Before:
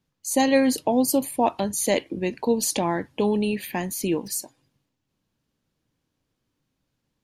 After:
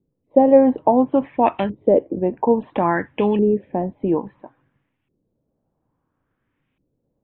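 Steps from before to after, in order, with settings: resampled via 8 kHz; LFO low-pass saw up 0.59 Hz 380–2600 Hz; trim +3.5 dB

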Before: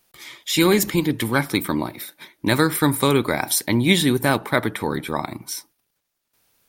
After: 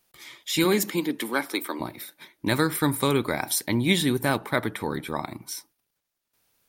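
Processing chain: 0.64–1.79 s: high-pass 150 Hz -> 350 Hz 24 dB/octave; trim -5 dB

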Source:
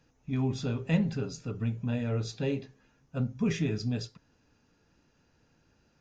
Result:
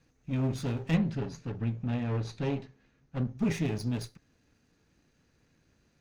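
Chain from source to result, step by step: comb filter that takes the minimum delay 0.47 ms; 0.96–3.38 s: distance through air 87 m

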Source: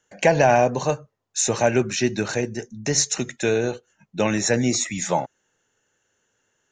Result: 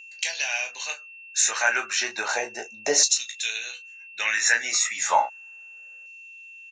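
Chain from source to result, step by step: early reflections 18 ms -6.5 dB, 35 ms -10 dB; LFO high-pass saw down 0.33 Hz 540–4400 Hz; whistle 2.7 kHz -42 dBFS

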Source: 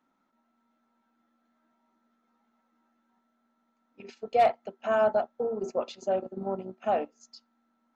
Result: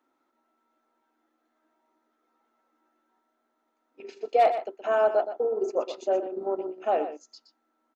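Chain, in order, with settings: resonant low shelf 250 Hz -9.5 dB, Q 3; on a send: delay 121 ms -10.5 dB

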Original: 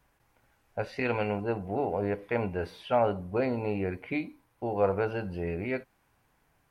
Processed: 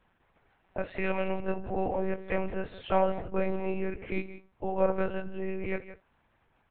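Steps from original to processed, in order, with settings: speakerphone echo 170 ms, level -13 dB; monotone LPC vocoder at 8 kHz 190 Hz

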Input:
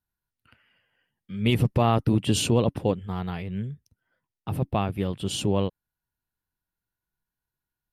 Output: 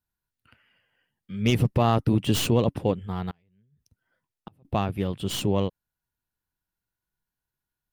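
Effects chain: tracing distortion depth 0.073 ms; 3.30–4.65 s: inverted gate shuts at -28 dBFS, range -34 dB

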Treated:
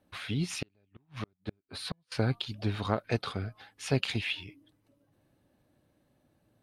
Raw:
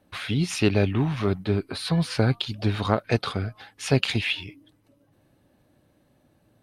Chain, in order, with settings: 0.55–2.12 s: inverted gate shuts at -16 dBFS, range -42 dB; trim -7 dB

